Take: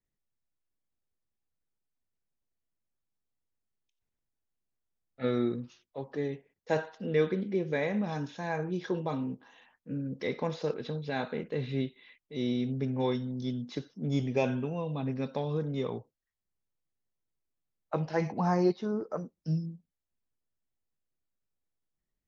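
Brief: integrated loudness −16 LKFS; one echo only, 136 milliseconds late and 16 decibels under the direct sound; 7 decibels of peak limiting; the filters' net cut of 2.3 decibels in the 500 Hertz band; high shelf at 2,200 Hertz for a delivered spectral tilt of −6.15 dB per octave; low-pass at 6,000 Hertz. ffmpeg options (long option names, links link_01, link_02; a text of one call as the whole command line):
ffmpeg -i in.wav -af "lowpass=6000,equalizer=frequency=500:width_type=o:gain=-3,highshelf=frequency=2200:gain=3.5,alimiter=limit=-22.5dB:level=0:latency=1,aecho=1:1:136:0.158,volume=19dB" out.wav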